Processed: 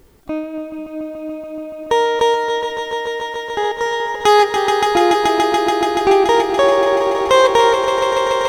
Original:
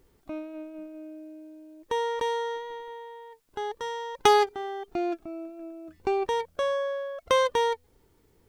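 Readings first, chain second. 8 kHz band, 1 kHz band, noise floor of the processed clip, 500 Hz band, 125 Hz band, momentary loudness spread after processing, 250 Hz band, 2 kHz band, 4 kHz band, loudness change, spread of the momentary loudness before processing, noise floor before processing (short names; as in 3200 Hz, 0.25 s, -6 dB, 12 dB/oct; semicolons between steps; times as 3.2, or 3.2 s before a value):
+13.0 dB, +13.5 dB, -30 dBFS, +13.5 dB, +14.0 dB, 15 LU, +15.5 dB, +14.5 dB, +13.5 dB, +13.0 dB, 20 LU, -64 dBFS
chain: swelling echo 0.143 s, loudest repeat 5, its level -11 dB; maximiser +14 dB; gain -1 dB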